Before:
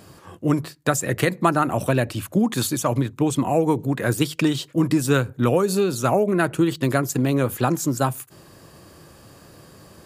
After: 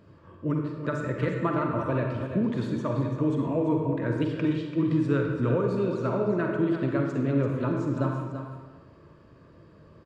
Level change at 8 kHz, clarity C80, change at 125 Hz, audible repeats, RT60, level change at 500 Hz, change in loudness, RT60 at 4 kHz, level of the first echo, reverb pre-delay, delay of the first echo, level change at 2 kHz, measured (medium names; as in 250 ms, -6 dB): under -25 dB, 2.5 dB, -4.0 dB, 1, 1.4 s, -5.5 dB, -5.5 dB, 0.95 s, -8.5 dB, 39 ms, 338 ms, -9.0 dB